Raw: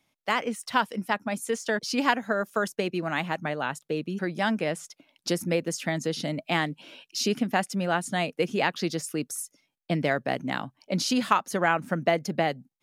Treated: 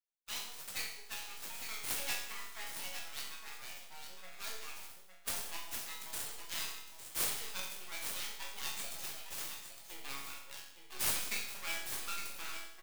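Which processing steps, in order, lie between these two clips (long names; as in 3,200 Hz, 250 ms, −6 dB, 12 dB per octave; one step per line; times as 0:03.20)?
spectral dynamics exaggerated over time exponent 1.5
full-wave rectification
parametric band 8,500 Hz +7.5 dB 0.86 octaves
reversed playback
upward compression, threshold −44 dBFS
reversed playback
first-order pre-emphasis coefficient 0.97
resonators tuned to a chord F#2 minor, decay 0.75 s
on a send: single-tap delay 859 ms −8.5 dB
on the sum: converter with an unsteady clock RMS 0.023 ms
level +18 dB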